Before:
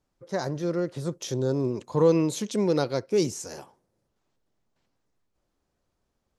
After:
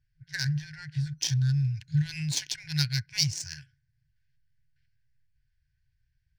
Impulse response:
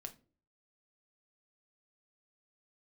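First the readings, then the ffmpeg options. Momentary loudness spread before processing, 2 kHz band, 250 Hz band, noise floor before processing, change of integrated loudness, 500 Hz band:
12 LU, +4.5 dB, n/a, -78 dBFS, -2.5 dB, under -35 dB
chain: -af "afftfilt=real='re*(1-between(b*sr/4096,160,1400))':imag='im*(1-between(b*sr/4096,160,1400))':win_size=4096:overlap=0.75,adynamicsmooth=sensitivity=7.5:basefreq=2k,superequalizer=6b=2.24:10b=0.316:14b=2.24:15b=1.41:16b=1.78,volume=7dB"

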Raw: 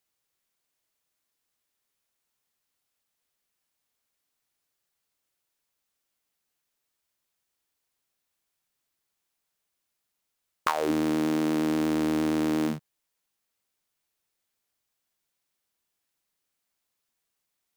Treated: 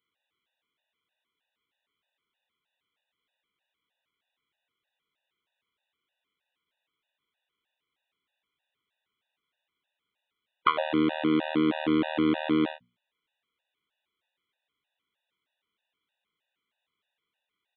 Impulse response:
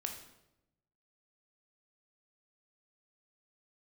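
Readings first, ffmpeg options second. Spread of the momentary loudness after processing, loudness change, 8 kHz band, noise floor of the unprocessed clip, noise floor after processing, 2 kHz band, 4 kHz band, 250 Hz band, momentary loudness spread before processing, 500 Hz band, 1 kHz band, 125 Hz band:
2 LU, 0.0 dB, under -30 dB, -82 dBFS, under -85 dBFS, +2.5 dB, +3.0 dB, 0.0 dB, 5 LU, 0.0 dB, +2.0 dB, -2.0 dB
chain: -af "lowshelf=f=70:g=-12,bandreject=f=60:t=h:w=6,bandreject=f=120:t=h:w=6,bandreject=f=180:t=h:w=6,bandreject=f=240:t=h:w=6,aresample=8000,aresample=44100,aemphasis=mode=production:type=75fm,afftfilt=real='re*gt(sin(2*PI*3.2*pts/sr)*(1-2*mod(floor(b*sr/1024/490),2)),0)':imag='im*gt(sin(2*PI*3.2*pts/sr)*(1-2*mod(floor(b*sr/1024/490),2)),0)':win_size=1024:overlap=0.75,volume=4.5dB"

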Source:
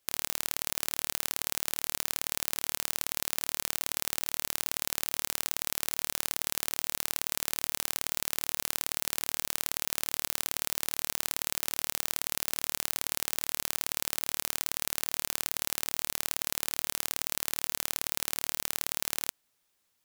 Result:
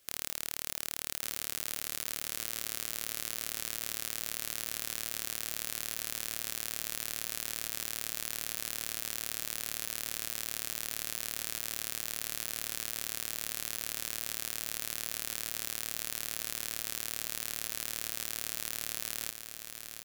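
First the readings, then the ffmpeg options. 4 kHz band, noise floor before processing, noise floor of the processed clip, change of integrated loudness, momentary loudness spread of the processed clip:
-4.0 dB, -76 dBFS, -45 dBFS, -4.0 dB, 0 LU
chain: -af "volume=17dB,asoftclip=hard,volume=-17dB,equalizer=f=900:w=4:g=-11,aecho=1:1:1153|2306|3459|4612|5765|6918:0.398|0.203|0.104|0.0528|0.0269|0.0137,volume=9dB"

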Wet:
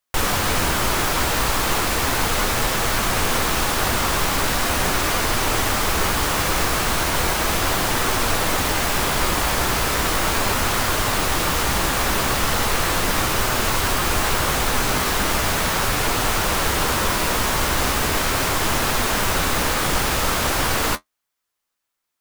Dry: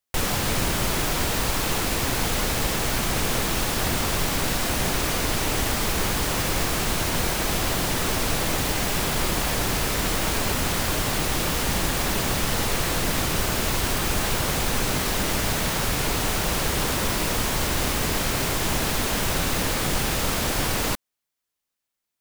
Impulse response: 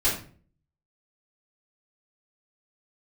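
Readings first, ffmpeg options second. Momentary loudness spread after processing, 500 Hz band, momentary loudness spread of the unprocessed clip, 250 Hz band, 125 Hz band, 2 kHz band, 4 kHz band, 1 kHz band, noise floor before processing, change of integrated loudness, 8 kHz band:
0 LU, +3.5 dB, 0 LU, +1.5 dB, +1.0 dB, +5.5 dB, +3.5 dB, +7.0 dB, -83 dBFS, +4.0 dB, +3.0 dB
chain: -af "equalizer=f=1.2k:t=o:w=1.2:g=5,flanger=delay=7.8:depth=9.3:regen=-45:speed=0.37:shape=triangular,equalizer=f=160:t=o:w=1.3:g=-3.5,volume=7dB"

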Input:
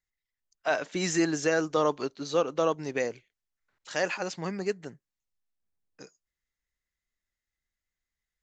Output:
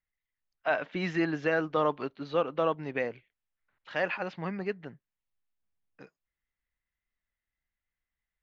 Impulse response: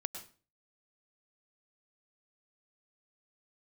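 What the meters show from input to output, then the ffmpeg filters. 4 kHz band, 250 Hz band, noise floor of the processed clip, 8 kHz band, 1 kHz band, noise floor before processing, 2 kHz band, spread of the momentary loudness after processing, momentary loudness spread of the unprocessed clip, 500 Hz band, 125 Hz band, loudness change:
-6.5 dB, -2.5 dB, under -85 dBFS, under -25 dB, -0.5 dB, under -85 dBFS, 0.0 dB, 9 LU, 9 LU, -2.5 dB, -0.5 dB, -2.0 dB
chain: -af "lowpass=f=3.2k:w=0.5412,lowpass=f=3.2k:w=1.3066,equalizer=f=390:w=1.6:g=-4"

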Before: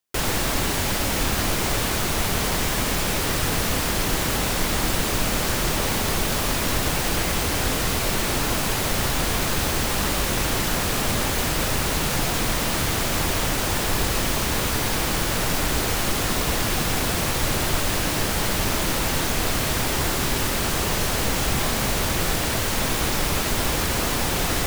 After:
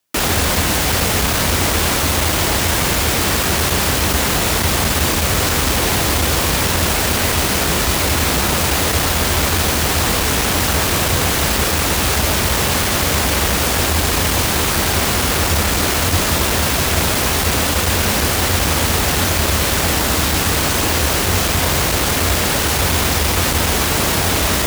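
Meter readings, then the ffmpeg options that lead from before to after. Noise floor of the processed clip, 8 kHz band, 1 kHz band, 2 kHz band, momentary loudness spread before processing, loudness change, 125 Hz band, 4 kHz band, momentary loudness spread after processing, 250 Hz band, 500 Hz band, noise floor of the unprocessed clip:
-18 dBFS, +7.5 dB, +7.0 dB, +7.5 dB, 0 LU, +7.5 dB, +8.0 dB, +7.5 dB, 0 LU, +6.0 dB, +6.5 dB, -24 dBFS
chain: -af "aeval=exprs='0.398*sin(PI/2*2.82*val(0)/0.398)':c=same,afreqshift=-92,highpass=57,volume=-3dB"

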